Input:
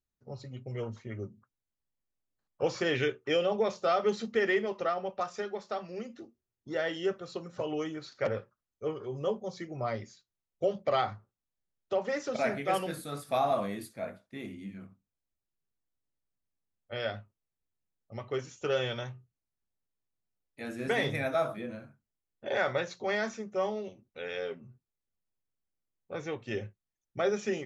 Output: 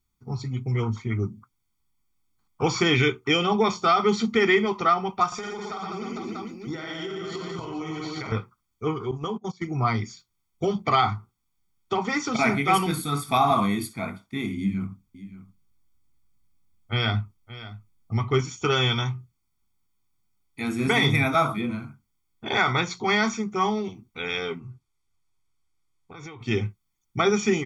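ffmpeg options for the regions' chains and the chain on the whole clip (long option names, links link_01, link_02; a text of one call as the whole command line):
ffmpeg -i in.wav -filter_complex "[0:a]asettb=1/sr,asplit=3[link_01][link_02][link_03];[link_01]atrim=end=5.274[link_04];[link_02]atrim=start=5.27:end=8.32,asetpts=PTS-STARTPTS,afade=type=in:duration=0.004:curve=qsin,afade=type=out:start_time=3.046:duration=0.004:curve=qsin,aecho=1:1:50|115|199.5|309.4|452.2|637.8:0.794|0.631|0.501|0.398|0.316|0.251,atrim=end_sample=134505,acompressor=threshold=-38dB:ratio=10:attack=3.2:release=140:knee=1:detection=peak[link_05];[link_03]atrim=start=8.316[link_06];[link_04][link_05]acrossfade=duration=0.004:curve1=hsin:curve2=qsin[link_07];[link_07][link_06]acrossfade=duration=0.004:curve1=qsin:curve2=hsin,asettb=1/sr,asplit=3[link_08][link_09][link_10];[link_08]atrim=end=9.114[link_11];[link_09]atrim=start=9.11:end=9.63,asetpts=PTS-STARTPTS,afade=type=in:duration=0.004:curve=qsin,afade=type=out:start_time=0.516:duration=0.004:curve=qsin,highpass=frequency=97:poles=1,agate=range=-18dB:threshold=-40dB:ratio=16:release=100:detection=peak,acompressor=threshold=-32dB:ratio=4:attack=3.2:release=140:knee=1:detection=peak[link_12];[link_10]atrim=start=9.626[link_13];[link_11][link_12]acrossfade=duration=0.004:curve1=hsin:curve2=qsin[link_14];[link_14][link_13]acrossfade=duration=0.004:curve1=qsin:curve2=hsin,asettb=1/sr,asplit=3[link_15][link_16][link_17];[link_15]atrim=end=14.574[link_18];[link_16]atrim=start=14.57:end=18.41,asetpts=PTS-STARTPTS,afade=type=in:duration=0.004:curve=qsin,afade=type=out:start_time=3.836:duration=0.004:curve=qsin,lowshelf=frequency=210:gain=7,aecho=1:1:573:0.168,atrim=end_sample=169344[link_19];[link_17]atrim=start=18.406[link_20];[link_18][link_19]acrossfade=duration=0.004:curve1=hsin:curve2=qsin[link_21];[link_21][link_20]acrossfade=duration=0.004:curve1=qsin:curve2=hsin,asettb=1/sr,asplit=3[link_22][link_23][link_24];[link_22]atrim=end=24.594[link_25];[link_23]atrim=start=24.59:end=26.41,asetpts=PTS-STARTPTS,afade=type=in:duration=0.004:curve=qsin,afade=type=out:start_time=1.816:duration=0.004:curve=qsin,equalizer=frequency=210:width=3.4:gain=-12,acompressor=threshold=-46dB:ratio=12:attack=3.2:release=140:knee=1:detection=peak,lowpass=10000[link_26];[link_24]atrim=start=26.406[link_27];[link_25][link_26]acrossfade=duration=0.004:curve1=hsin:curve2=qsin[link_28];[link_28][link_27]acrossfade=duration=0.004:curve1=qsin:curve2=hsin,aecho=1:1:0.9:0.96,alimiter=level_in=18dB:limit=-1dB:release=50:level=0:latency=1,volume=-9dB" out.wav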